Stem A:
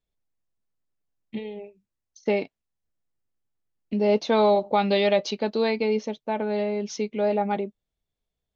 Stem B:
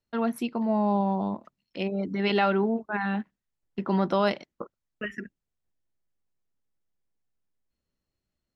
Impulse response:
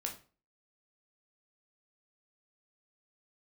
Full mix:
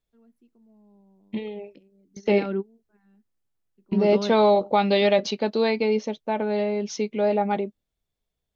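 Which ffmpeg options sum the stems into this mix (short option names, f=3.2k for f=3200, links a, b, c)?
-filter_complex "[0:a]volume=1.5dB,asplit=2[a][b];[1:a]lowshelf=f=550:t=q:w=1.5:g=9,volume=-11.5dB[c];[b]apad=whole_len=377267[d];[c][d]sidechaingate=range=-29dB:threshold=-48dB:ratio=16:detection=peak[e];[a][e]amix=inputs=2:normalize=0"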